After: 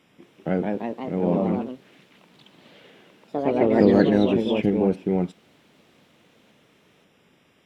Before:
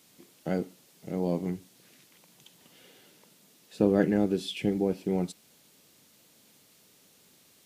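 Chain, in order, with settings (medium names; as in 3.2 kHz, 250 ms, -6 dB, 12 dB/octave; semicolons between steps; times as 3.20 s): Savitzky-Golay filter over 25 samples; ever faster or slower copies 218 ms, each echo +2 st, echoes 3; trim +5.5 dB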